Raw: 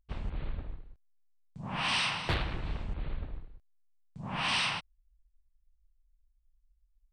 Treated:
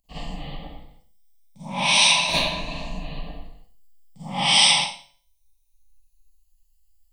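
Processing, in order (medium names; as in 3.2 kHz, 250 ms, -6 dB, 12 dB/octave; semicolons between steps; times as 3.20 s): drifting ripple filter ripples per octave 1.5, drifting +0.3 Hz, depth 10 dB; tilt EQ +2 dB/octave; static phaser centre 390 Hz, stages 6; feedback comb 140 Hz, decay 0.52 s, harmonics all, mix 50%; Schroeder reverb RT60 0.4 s, DRR -9.5 dB; trim +8.5 dB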